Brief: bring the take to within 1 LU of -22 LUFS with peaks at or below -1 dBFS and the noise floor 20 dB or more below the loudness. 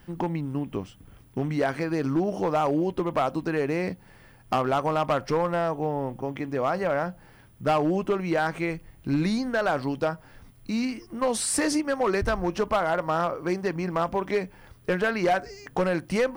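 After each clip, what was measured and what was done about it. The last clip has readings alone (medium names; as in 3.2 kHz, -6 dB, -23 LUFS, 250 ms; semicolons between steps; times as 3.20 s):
clipped samples 1.3%; clipping level -17.5 dBFS; loudness -27.0 LUFS; peak level -17.5 dBFS; loudness target -22.0 LUFS
-> clip repair -17.5 dBFS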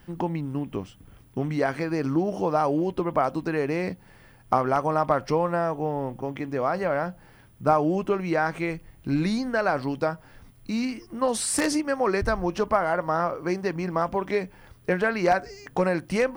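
clipped samples 0.0%; loudness -26.0 LUFS; peak level -8.5 dBFS; loudness target -22.0 LUFS
-> trim +4 dB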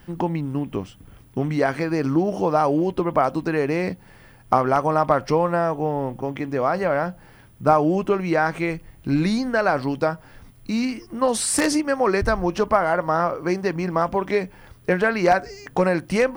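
loudness -22.0 LUFS; peak level -4.5 dBFS; noise floor -50 dBFS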